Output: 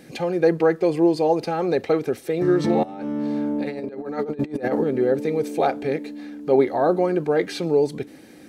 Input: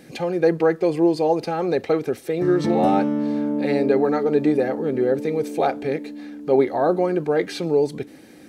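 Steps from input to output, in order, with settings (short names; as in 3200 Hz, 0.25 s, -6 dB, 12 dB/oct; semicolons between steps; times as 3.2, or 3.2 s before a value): 2.83–4.84 negative-ratio compressor -25 dBFS, ratio -0.5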